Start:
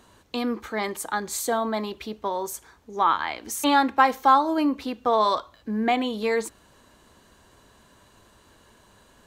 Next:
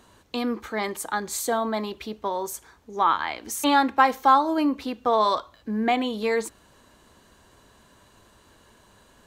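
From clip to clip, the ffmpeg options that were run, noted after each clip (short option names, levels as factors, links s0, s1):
-af anull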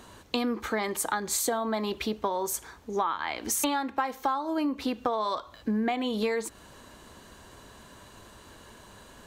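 -af "acompressor=threshold=0.0316:ratio=16,volume=1.88"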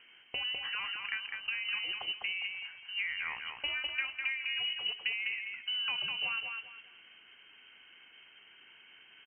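-filter_complex "[0:a]acrusher=bits=5:mode=log:mix=0:aa=0.000001,asplit=2[s0][s1];[s1]aecho=0:1:203|406|609|812:0.596|0.167|0.0467|0.0131[s2];[s0][s2]amix=inputs=2:normalize=0,lowpass=f=2700:t=q:w=0.5098,lowpass=f=2700:t=q:w=0.6013,lowpass=f=2700:t=q:w=0.9,lowpass=f=2700:t=q:w=2.563,afreqshift=-3200,volume=0.398"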